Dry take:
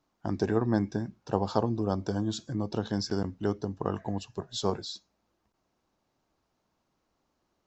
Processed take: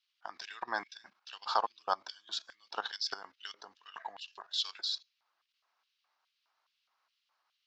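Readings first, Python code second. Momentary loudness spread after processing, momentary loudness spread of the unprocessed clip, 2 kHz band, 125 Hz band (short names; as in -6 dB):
16 LU, 8 LU, +3.0 dB, under -40 dB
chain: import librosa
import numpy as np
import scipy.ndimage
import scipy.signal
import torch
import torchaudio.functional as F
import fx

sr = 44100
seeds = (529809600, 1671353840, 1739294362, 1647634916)

y = fx.level_steps(x, sr, step_db=14)
y = fx.band_shelf(y, sr, hz=2400.0, db=13.0, octaves=2.6)
y = fx.filter_lfo_highpass(y, sr, shape='square', hz=2.4, low_hz=790.0, high_hz=3000.0, q=2.3)
y = F.gain(torch.from_numpy(y), -4.5).numpy()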